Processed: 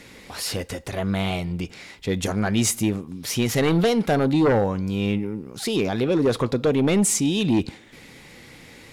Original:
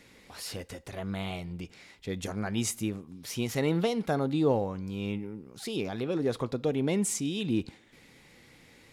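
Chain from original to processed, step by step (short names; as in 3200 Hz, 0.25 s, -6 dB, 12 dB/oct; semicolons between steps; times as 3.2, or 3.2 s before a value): sine folder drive 7 dB, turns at -14 dBFS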